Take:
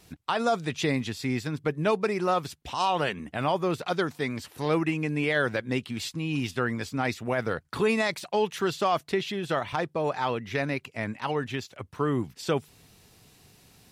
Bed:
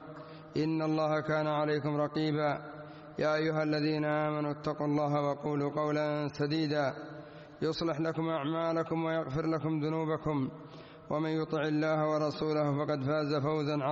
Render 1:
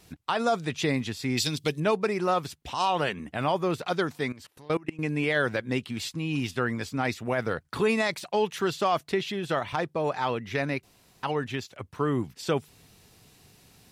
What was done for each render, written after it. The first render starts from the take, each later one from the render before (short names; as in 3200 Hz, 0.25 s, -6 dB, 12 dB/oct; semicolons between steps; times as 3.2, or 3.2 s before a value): 1.37–1.8 resonant high shelf 2400 Hz +14 dB, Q 1.5; 4.32–4.99 level quantiser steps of 24 dB; 10.83–11.23 room tone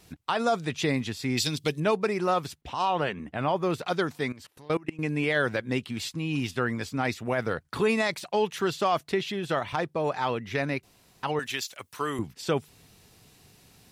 2.61–3.63 high shelf 4500 Hz -11.5 dB; 11.39–12.19 tilt +4 dB/oct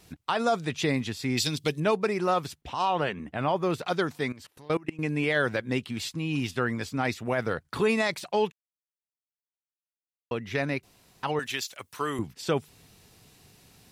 8.52–10.31 mute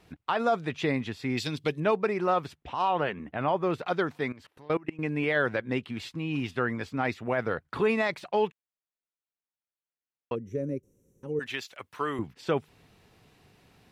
10.35–11.41 spectral gain 580–5500 Hz -25 dB; tone controls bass -3 dB, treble -14 dB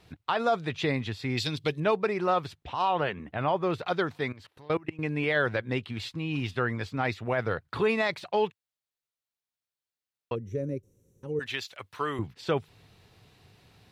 fifteen-band EQ 100 Hz +7 dB, 250 Hz -3 dB, 4000 Hz +5 dB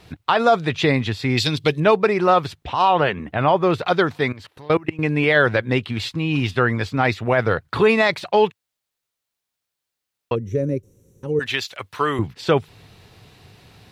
gain +10 dB